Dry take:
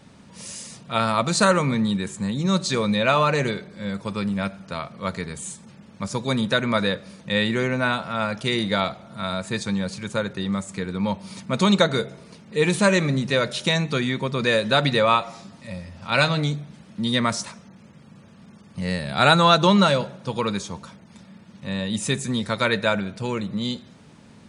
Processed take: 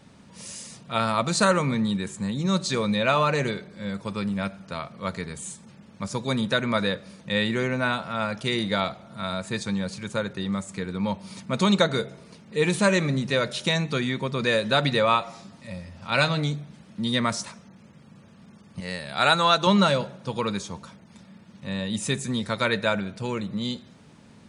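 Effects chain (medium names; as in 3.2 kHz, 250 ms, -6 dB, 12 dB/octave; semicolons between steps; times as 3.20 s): 18.80–19.67 s: bass shelf 350 Hz -10 dB; trim -2.5 dB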